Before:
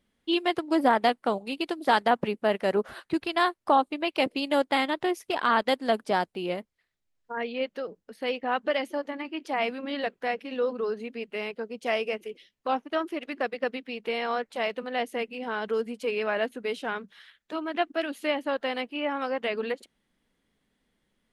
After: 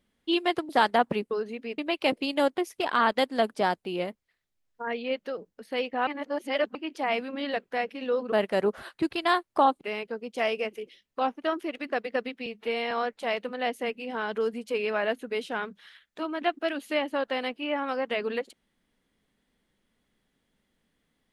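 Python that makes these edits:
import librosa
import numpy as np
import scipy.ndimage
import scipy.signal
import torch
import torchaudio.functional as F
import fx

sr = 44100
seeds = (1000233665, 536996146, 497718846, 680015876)

y = fx.edit(x, sr, fx.cut(start_s=0.69, length_s=1.12),
    fx.swap(start_s=2.43, length_s=1.49, other_s=10.82, other_length_s=0.47),
    fx.cut(start_s=4.72, length_s=0.36),
    fx.reverse_span(start_s=8.57, length_s=0.68),
    fx.stretch_span(start_s=13.94, length_s=0.3, factor=1.5), tone=tone)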